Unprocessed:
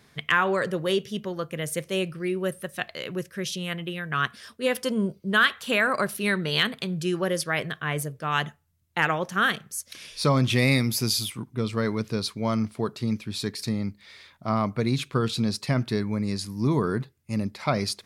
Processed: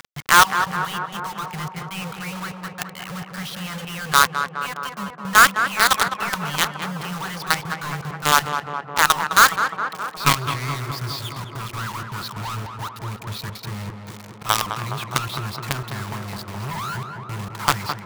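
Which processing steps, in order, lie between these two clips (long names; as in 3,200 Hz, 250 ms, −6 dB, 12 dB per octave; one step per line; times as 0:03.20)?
Bessel low-pass filter 3,100 Hz, order 6
reverb reduction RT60 0.59 s
inverse Chebyshev band-stop filter 250–550 Hz, stop band 40 dB
flat-topped bell 1,100 Hz +9.5 dB 1 octave
upward compression, threshold −37 dBFS
log-companded quantiser 2 bits
on a send: tape delay 209 ms, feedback 87%, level −4 dB, low-pass 1,600 Hz
on the sum: level −3.5 dB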